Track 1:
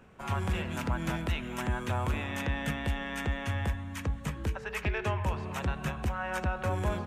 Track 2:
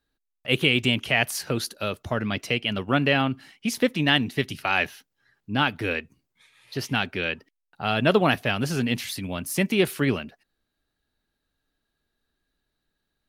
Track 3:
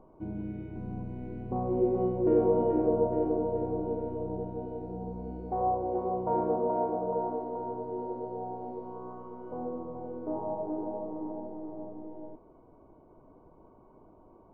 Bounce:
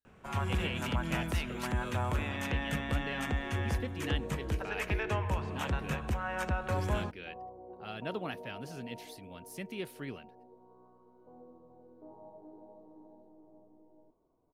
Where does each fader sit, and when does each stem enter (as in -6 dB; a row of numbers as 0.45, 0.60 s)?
-1.5, -18.5, -18.0 dB; 0.05, 0.00, 1.75 s